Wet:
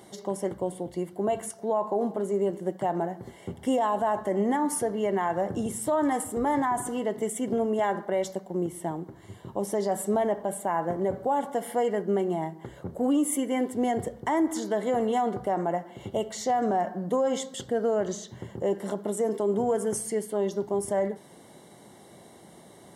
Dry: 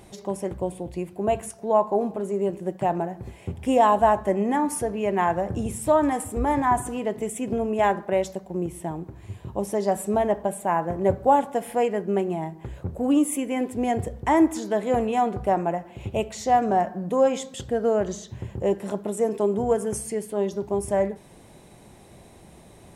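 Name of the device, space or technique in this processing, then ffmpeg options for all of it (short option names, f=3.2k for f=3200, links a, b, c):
PA system with an anti-feedback notch: -af "highpass=170,asuperstop=centerf=2500:order=20:qfactor=6,alimiter=limit=-17.5dB:level=0:latency=1:release=50"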